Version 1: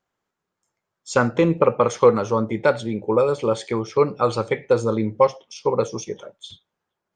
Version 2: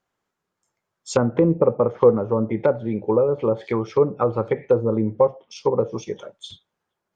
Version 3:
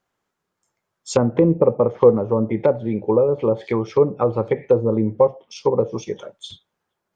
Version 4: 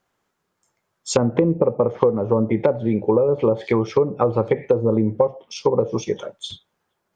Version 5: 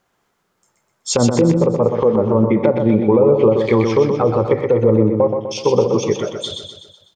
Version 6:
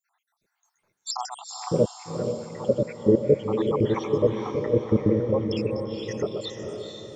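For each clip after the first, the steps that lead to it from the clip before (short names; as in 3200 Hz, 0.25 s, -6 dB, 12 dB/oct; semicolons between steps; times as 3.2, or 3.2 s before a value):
treble ducked by the level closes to 690 Hz, closed at -16 dBFS; gain +1 dB
dynamic EQ 1400 Hz, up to -7 dB, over -44 dBFS, Q 3.2; gain +2 dB
compressor 10:1, threshold -17 dBFS, peak gain reduction 11 dB; gain +4 dB
limiter -10.5 dBFS, peak gain reduction 9 dB; on a send: feedback echo 0.125 s, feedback 51%, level -5.5 dB; on the sum: gain +5.5 dB
random spectral dropouts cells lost 79%; diffused feedback echo 0.463 s, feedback 51%, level -5 dB; gain -3.5 dB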